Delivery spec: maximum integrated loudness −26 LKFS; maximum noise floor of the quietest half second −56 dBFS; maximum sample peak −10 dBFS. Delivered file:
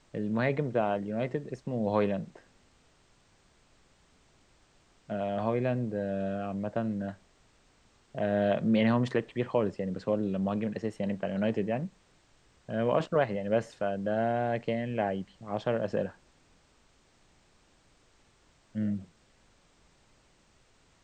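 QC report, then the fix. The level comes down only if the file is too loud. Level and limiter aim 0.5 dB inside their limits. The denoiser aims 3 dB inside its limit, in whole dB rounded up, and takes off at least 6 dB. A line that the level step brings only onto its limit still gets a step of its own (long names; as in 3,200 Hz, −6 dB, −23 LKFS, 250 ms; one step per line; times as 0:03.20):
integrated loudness −31.0 LKFS: in spec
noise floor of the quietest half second −65 dBFS: in spec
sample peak −14.0 dBFS: in spec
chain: no processing needed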